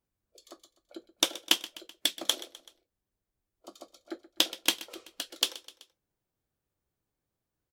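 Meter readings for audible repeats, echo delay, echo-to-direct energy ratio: 3, 127 ms, -16.5 dB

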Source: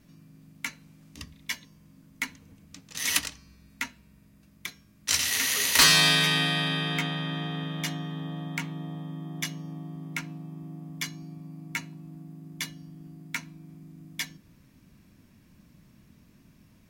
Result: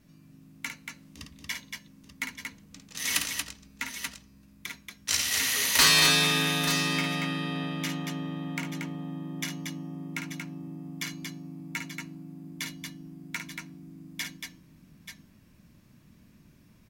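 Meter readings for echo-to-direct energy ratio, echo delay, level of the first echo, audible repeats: -2.0 dB, 53 ms, -7.0 dB, 3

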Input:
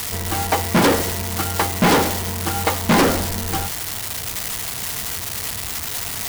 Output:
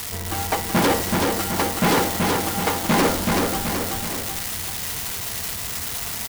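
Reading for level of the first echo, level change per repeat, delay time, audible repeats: -3.0 dB, -5.5 dB, 378 ms, 3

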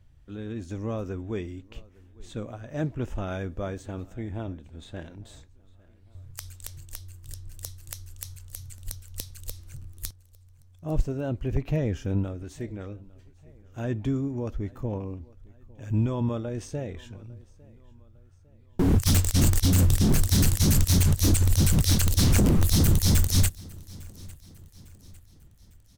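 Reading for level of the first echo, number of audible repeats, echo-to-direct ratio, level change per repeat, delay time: -24.0 dB, 2, -23.0 dB, -6.5 dB, 853 ms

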